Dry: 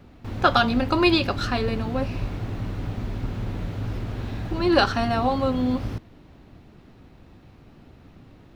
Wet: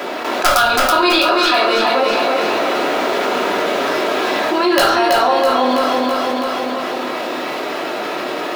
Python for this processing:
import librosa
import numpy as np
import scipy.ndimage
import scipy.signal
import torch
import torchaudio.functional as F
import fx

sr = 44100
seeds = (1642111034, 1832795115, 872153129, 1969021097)

p1 = scipy.signal.sosfilt(scipy.signal.butter(4, 410.0, 'highpass', fs=sr, output='sos'), x)
p2 = fx.rider(p1, sr, range_db=4, speed_s=0.5)
p3 = p1 + F.gain(torch.from_numpy(p2), 2.5).numpy()
p4 = (np.mod(10.0 ** (0.5 / 20.0) * p3 + 1.0, 2.0) - 1.0) / 10.0 ** (0.5 / 20.0)
p5 = fx.echo_feedback(p4, sr, ms=328, feedback_pct=42, wet_db=-6.0)
p6 = fx.room_shoebox(p5, sr, seeds[0], volume_m3=400.0, walls='furnished', distance_m=2.9)
p7 = fx.env_flatten(p6, sr, amount_pct=70)
y = F.gain(torch.from_numpy(p7), -6.5).numpy()